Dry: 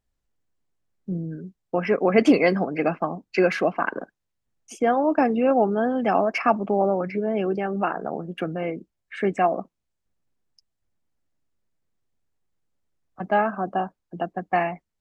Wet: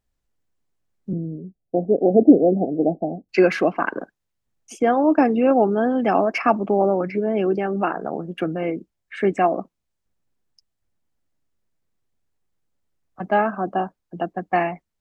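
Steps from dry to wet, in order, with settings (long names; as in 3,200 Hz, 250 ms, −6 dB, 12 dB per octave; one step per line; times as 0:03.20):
0:01.13–0:03.29: Butterworth low-pass 770 Hz 96 dB per octave
dynamic equaliser 320 Hz, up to +5 dB, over −35 dBFS, Q 2.2
level +1.5 dB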